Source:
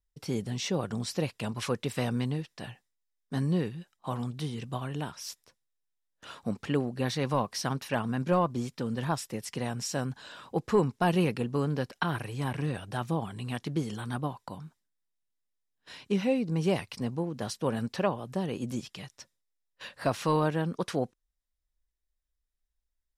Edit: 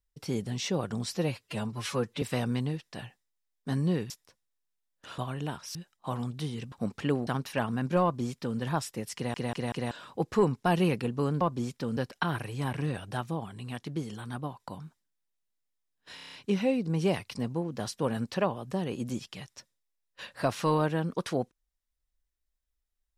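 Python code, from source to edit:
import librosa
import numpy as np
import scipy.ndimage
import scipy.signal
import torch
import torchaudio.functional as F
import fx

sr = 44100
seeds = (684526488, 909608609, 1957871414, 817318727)

y = fx.edit(x, sr, fx.stretch_span(start_s=1.17, length_s=0.7, factor=1.5),
    fx.swap(start_s=3.75, length_s=0.97, other_s=5.29, other_length_s=1.08),
    fx.cut(start_s=6.92, length_s=0.71),
    fx.duplicate(start_s=8.39, length_s=0.56, to_s=11.77),
    fx.stutter_over(start_s=9.51, slice_s=0.19, count=4),
    fx.clip_gain(start_s=13.01, length_s=1.39, db=-3.5),
    fx.stutter(start_s=15.95, slice_s=0.03, count=7), tone=tone)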